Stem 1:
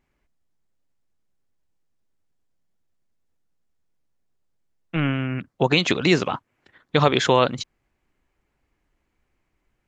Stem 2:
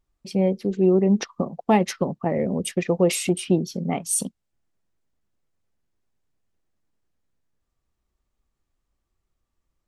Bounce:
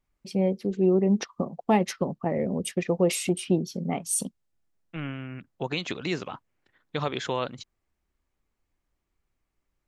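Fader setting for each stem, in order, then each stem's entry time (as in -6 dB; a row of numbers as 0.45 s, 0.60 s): -11.5 dB, -3.5 dB; 0.00 s, 0.00 s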